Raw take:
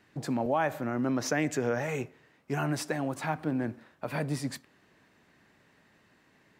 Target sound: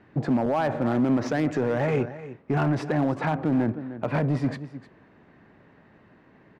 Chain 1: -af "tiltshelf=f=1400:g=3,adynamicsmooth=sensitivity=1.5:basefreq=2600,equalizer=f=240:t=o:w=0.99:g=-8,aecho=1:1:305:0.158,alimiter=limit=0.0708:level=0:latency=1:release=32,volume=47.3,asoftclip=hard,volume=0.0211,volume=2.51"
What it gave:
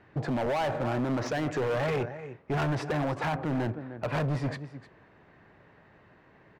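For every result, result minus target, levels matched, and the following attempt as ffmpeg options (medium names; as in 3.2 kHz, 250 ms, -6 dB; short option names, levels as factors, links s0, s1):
overload inside the chain: distortion +13 dB; 250 Hz band -3.0 dB
-af "tiltshelf=f=1400:g=3,adynamicsmooth=sensitivity=1.5:basefreq=2600,equalizer=f=240:t=o:w=0.99:g=-8,aecho=1:1:305:0.158,alimiter=limit=0.0708:level=0:latency=1:release=32,volume=18.8,asoftclip=hard,volume=0.0531,volume=2.51"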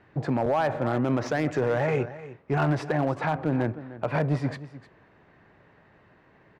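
250 Hz band -3.0 dB
-af "tiltshelf=f=1400:g=3,adynamicsmooth=sensitivity=1.5:basefreq=2600,aecho=1:1:305:0.158,alimiter=limit=0.0708:level=0:latency=1:release=32,volume=18.8,asoftclip=hard,volume=0.0531,volume=2.51"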